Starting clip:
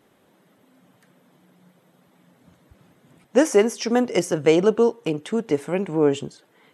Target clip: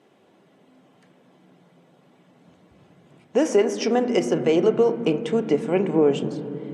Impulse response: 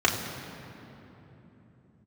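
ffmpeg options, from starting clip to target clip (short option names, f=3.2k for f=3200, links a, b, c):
-filter_complex "[0:a]alimiter=limit=-12dB:level=0:latency=1:release=190,highpass=120,lowpass=7k,asplit=2[a][b];[1:a]atrim=start_sample=2205,lowpass=2.6k[c];[b][c]afir=irnorm=-1:irlink=0,volume=-19dB[d];[a][d]amix=inputs=2:normalize=0"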